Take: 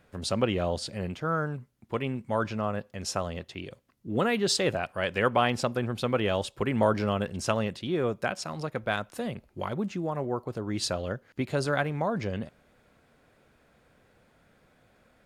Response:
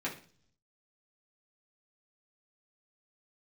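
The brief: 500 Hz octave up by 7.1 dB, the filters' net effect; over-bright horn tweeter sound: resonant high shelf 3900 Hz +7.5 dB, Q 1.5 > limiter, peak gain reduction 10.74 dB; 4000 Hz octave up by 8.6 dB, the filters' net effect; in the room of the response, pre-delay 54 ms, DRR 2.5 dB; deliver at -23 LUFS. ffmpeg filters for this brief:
-filter_complex "[0:a]equalizer=f=500:t=o:g=8.5,equalizer=f=4k:t=o:g=3.5,asplit=2[a][b];[1:a]atrim=start_sample=2205,adelay=54[c];[b][c]afir=irnorm=-1:irlink=0,volume=-7dB[d];[a][d]amix=inputs=2:normalize=0,highshelf=f=3.9k:t=q:w=1.5:g=7.5,volume=2.5dB,alimiter=limit=-12dB:level=0:latency=1"

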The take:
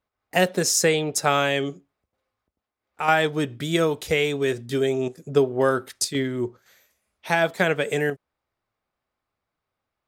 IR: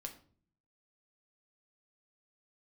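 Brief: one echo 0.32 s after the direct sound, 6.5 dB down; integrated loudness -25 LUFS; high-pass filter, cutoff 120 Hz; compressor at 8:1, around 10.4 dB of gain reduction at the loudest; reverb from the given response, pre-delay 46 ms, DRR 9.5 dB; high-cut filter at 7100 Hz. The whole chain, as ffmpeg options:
-filter_complex "[0:a]highpass=120,lowpass=7.1k,acompressor=threshold=-24dB:ratio=8,aecho=1:1:320:0.473,asplit=2[a][b];[1:a]atrim=start_sample=2205,adelay=46[c];[b][c]afir=irnorm=-1:irlink=0,volume=-6dB[d];[a][d]amix=inputs=2:normalize=0,volume=3.5dB"

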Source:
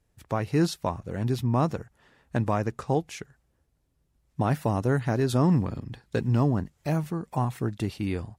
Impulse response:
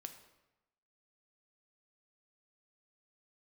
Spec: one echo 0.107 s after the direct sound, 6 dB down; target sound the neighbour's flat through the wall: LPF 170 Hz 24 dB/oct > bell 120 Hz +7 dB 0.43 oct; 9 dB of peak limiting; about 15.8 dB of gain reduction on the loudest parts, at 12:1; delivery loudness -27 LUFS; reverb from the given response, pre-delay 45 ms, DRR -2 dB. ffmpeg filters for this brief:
-filter_complex "[0:a]acompressor=threshold=-35dB:ratio=12,alimiter=level_in=8dB:limit=-24dB:level=0:latency=1,volume=-8dB,aecho=1:1:107:0.501,asplit=2[a][b];[1:a]atrim=start_sample=2205,adelay=45[c];[b][c]afir=irnorm=-1:irlink=0,volume=6.5dB[d];[a][d]amix=inputs=2:normalize=0,lowpass=f=170:w=0.5412,lowpass=f=170:w=1.3066,equalizer=f=120:t=o:w=0.43:g=7,volume=10.5dB"

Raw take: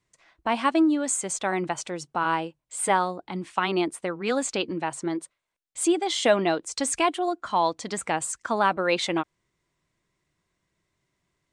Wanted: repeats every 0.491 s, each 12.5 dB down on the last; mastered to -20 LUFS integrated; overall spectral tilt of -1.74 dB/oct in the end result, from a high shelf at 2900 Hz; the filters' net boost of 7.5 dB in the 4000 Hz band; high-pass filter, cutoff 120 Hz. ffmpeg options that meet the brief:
-af "highpass=120,highshelf=f=2.9k:g=6,equalizer=f=4k:t=o:g=5,aecho=1:1:491|982|1473:0.237|0.0569|0.0137,volume=3.5dB"

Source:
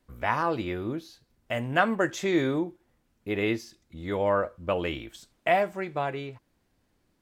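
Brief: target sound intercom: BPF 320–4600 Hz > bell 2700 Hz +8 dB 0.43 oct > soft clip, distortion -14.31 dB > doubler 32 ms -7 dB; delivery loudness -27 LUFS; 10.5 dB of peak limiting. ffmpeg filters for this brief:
-filter_complex "[0:a]alimiter=limit=-18dB:level=0:latency=1,highpass=320,lowpass=4.6k,equalizer=f=2.7k:t=o:w=0.43:g=8,asoftclip=threshold=-23.5dB,asplit=2[a][b];[b]adelay=32,volume=-7dB[c];[a][c]amix=inputs=2:normalize=0,volume=6dB"

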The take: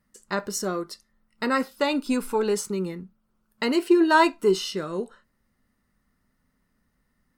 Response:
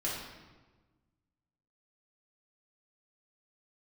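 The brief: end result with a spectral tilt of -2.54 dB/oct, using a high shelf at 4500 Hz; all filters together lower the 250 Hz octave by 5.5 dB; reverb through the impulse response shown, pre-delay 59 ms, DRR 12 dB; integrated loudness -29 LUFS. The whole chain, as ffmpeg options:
-filter_complex "[0:a]equalizer=f=250:t=o:g=-8.5,highshelf=f=4.5k:g=4.5,asplit=2[a][b];[1:a]atrim=start_sample=2205,adelay=59[c];[b][c]afir=irnorm=-1:irlink=0,volume=-17dB[d];[a][d]amix=inputs=2:normalize=0,volume=-3dB"

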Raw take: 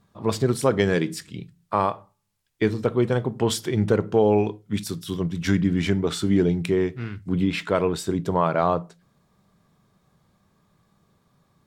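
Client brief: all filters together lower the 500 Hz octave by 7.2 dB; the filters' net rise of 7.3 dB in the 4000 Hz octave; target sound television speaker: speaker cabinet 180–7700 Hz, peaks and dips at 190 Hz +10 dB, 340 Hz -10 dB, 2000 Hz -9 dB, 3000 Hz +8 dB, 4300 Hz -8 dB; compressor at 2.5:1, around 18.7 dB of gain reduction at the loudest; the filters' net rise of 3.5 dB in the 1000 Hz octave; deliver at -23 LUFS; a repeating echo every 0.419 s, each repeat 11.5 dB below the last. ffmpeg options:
-af "equalizer=f=500:t=o:g=-8,equalizer=f=1k:t=o:g=6.5,equalizer=f=4k:t=o:g=7,acompressor=threshold=-44dB:ratio=2.5,highpass=f=180:w=0.5412,highpass=f=180:w=1.3066,equalizer=f=190:t=q:w=4:g=10,equalizer=f=340:t=q:w=4:g=-10,equalizer=f=2k:t=q:w=4:g=-9,equalizer=f=3k:t=q:w=4:g=8,equalizer=f=4.3k:t=q:w=4:g=-8,lowpass=f=7.7k:w=0.5412,lowpass=f=7.7k:w=1.3066,aecho=1:1:419|838|1257:0.266|0.0718|0.0194,volume=16dB"

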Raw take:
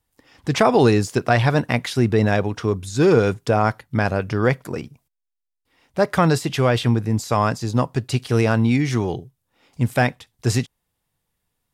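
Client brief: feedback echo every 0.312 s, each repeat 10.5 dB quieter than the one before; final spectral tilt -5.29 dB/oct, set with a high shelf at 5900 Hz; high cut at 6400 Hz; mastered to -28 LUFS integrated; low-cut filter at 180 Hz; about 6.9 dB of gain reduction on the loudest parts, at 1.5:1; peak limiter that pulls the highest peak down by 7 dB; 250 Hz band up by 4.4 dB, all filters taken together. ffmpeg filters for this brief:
-af "highpass=180,lowpass=6.4k,equalizer=f=250:t=o:g=7,highshelf=f=5.9k:g=6.5,acompressor=threshold=-28dB:ratio=1.5,alimiter=limit=-12dB:level=0:latency=1,aecho=1:1:312|624|936:0.299|0.0896|0.0269,volume=-3dB"

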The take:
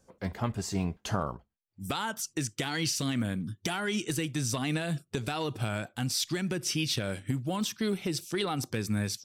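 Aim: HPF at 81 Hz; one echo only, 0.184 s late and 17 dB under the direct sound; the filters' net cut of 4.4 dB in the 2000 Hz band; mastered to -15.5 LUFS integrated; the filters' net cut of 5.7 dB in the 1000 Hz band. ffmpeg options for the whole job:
-af "highpass=81,equalizer=f=1k:t=o:g=-7,equalizer=f=2k:t=o:g=-3.5,aecho=1:1:184:0.141,volume=17.5dB"

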